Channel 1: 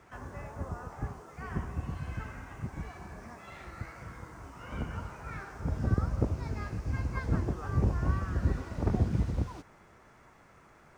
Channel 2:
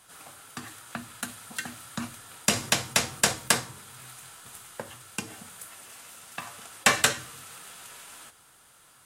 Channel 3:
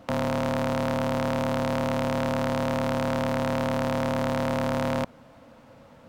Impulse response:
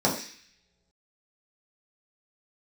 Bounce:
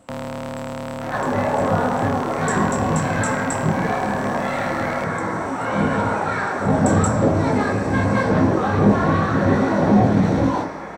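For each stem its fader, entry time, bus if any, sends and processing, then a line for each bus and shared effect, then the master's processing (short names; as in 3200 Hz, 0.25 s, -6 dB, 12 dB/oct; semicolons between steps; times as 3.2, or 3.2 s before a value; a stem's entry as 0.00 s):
-2.0 dB, 1.00 s, send -9.5 dB, overdrive pedal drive 34 dB, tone 2000 Hz, clips at -12 dBFS; bell 90 Hz +5 dB 1 oct; detuned doubles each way 48 cents
-1.5 dB, 0.00 s, send -6 dB, transient shaper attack -5 dB, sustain -9 dB; band-pass 7700 Hz, Q 9.7
-3.0 dB, 0.00 s, no send, dry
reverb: on, pre-delay 3 ms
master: dry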